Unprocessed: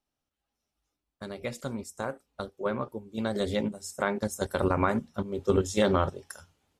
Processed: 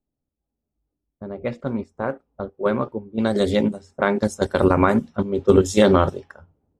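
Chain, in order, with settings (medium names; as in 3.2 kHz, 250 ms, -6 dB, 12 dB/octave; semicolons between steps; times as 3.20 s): dynamic bell 300 Hz, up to +4 dB, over -37 dBFS, Q 0.83; level-controlled noise filter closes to 400 Hz, open at -22.5 dBFS; trim +7 dB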